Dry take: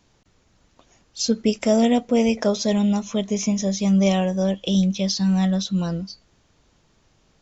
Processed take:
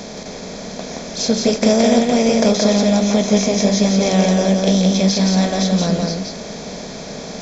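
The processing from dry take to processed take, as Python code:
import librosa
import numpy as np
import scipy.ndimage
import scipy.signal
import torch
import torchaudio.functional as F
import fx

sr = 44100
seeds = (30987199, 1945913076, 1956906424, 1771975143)

p1 = fx.bin_compress(x, sr, power=0.4)
p2 = fx.notch(p1, sr, hz=2900.0, q=5.5)
y = p2 + fx.echo_single(p2, sr, ms=173, db=-3.0, dry=0)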